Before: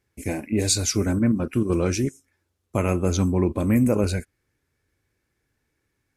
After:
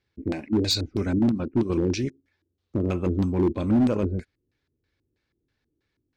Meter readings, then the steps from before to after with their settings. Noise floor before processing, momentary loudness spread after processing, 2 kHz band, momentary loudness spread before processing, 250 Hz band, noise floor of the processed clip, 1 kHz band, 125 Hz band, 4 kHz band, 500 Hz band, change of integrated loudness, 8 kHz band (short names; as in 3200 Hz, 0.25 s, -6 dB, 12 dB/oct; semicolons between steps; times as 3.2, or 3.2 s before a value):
-76 dBFS, 10 LU, -6.0 dB, 9 LU, -0.5 dB, -79 dBFS, -3.5 dB, -3.5 dB, +0.5 dB, -2.5 dB, -2.0 dB, under -10 dB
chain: LFO low-pass square 3.1 Hz 330–4100 Hz; hard clip -12.5 dBFS, distortion -17 dB; gain -3.5 dB